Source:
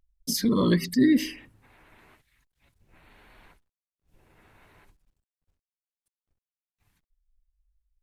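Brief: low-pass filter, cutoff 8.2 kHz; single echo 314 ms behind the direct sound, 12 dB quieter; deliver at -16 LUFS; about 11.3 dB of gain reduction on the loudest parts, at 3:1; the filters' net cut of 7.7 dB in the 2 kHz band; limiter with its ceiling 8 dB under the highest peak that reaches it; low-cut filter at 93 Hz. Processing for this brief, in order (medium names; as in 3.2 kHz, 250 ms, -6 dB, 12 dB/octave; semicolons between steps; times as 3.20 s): high-pass 93 Hz; low-pass 8.2 kHz; peaking EQ 2 kHz -9 dB; compression 3:1, threshold -32 dBFS; peak limiter -29.5 dBFS; delay 314 ms -12 dB; trim +22.5 dB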